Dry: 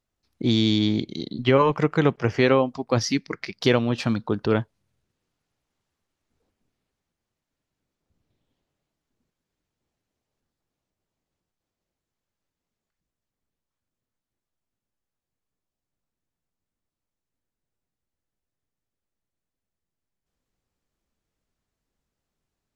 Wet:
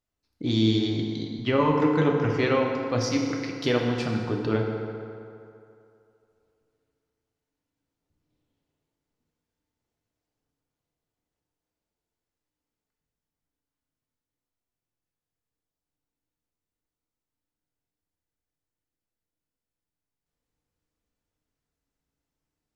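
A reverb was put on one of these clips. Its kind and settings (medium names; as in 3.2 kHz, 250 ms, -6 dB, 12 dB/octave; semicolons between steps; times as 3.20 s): FDN reverb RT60 2.6 s, low-frequency decay 0.8×, high-frequency decay 0.6×, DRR 0 dB; trim -6 dB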